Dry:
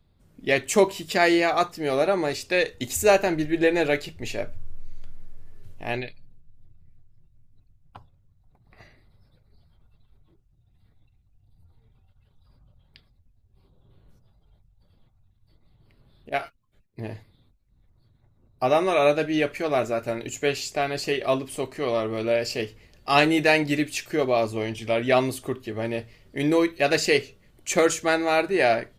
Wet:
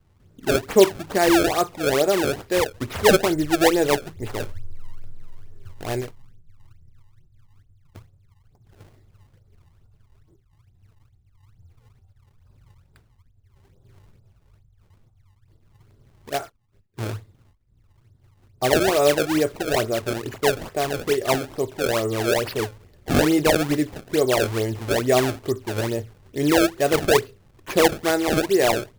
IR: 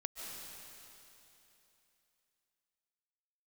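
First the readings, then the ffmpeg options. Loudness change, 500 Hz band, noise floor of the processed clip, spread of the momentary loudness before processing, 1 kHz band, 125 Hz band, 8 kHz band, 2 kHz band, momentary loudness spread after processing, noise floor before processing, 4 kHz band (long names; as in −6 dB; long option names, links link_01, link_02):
+2.0 dB, +2.5 dB, −60 dBFS, 13 LU, +1.0 dB, +5.5 dB, +4.0 dB, −0.5 dB, 13 LU, −64 dBFS, +3.0 dB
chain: -af "equalizer=frequency=100:width_type=o:width=0.67:gain=9,equalizer=frequency=400:width_type=o:width=0.67:gain=6,equalizer=frequency=2500:width_type=o:width=0.67:gain=-8,equalizer=frequency=10000:width_type=o:width=0.67:gain=-8,acrusher=samples=26:mix=1:aa=0.000001:lfo=1:lforange=41.6:lforate=2.3"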